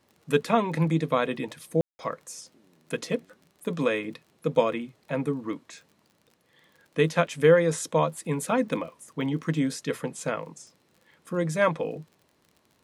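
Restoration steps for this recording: de-click; room tone fill 1.81–1.99 s

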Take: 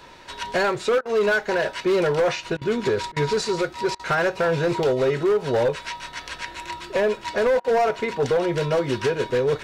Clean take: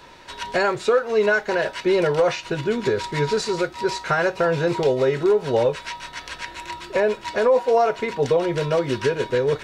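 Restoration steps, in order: clip repair -16 dBFS; interpolate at 1.01/2.57/3.12/3.95/7.60 s, 43 ms

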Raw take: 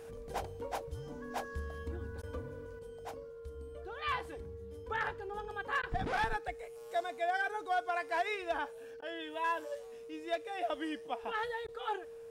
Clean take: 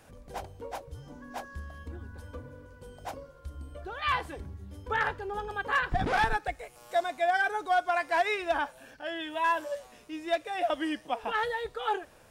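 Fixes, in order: band-stop 460 Hz, Q 30; interpolate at 2.22/5.82/9.01/11.67 s, 11 ms; gain correction +7 dB, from 2.79 s

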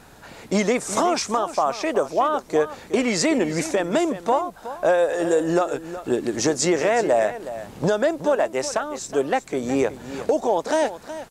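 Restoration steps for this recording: expander -34 dBFS, range -21 dB; inverse comb 369 ms -13 dB

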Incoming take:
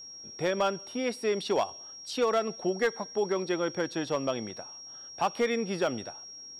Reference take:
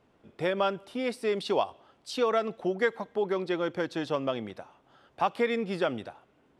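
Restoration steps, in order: clip repair -19.5 dBFS; band-stop 5.6 kHz, Q 30

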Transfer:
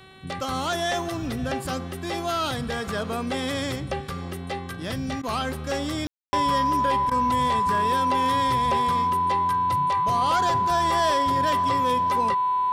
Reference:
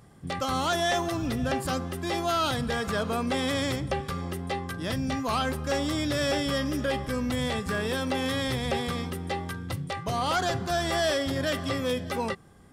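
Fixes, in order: de-hum 379.9 Hz, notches 11; band-stop 1 kHz, Q 30; room tone fill 6.07–6.33 s; interpolate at 5.22/7.10 s, 12 ms

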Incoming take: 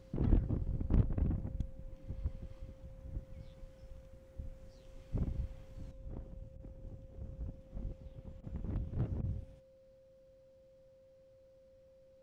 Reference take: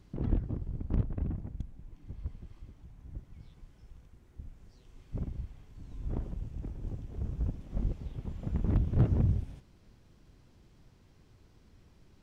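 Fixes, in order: band-stop 530 Hz, Q 30; interpolate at 6.57/8.41/9.21 s, 25 ms; trim 0 dB, from 5.91 s +11 dB

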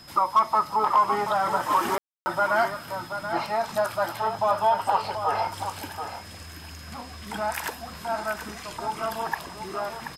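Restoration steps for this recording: clip repair -12 dBFS; band-stop 5.1 kHz, Q 30; room tone fill 1.98–2.26 s; inverse comb 731 ms -9 dB

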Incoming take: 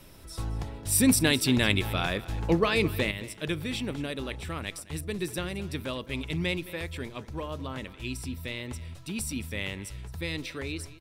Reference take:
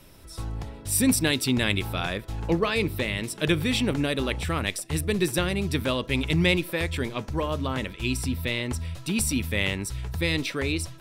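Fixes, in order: de-click; inverse comb 216 ms -17.5 dB; gain correction +8 dB, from 3.11 s

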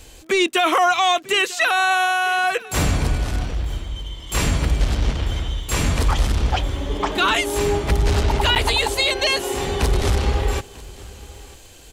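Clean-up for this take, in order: de-click; interpolate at 8.55 s, 8.4 ms; inverse comb 944 ms -21 dB

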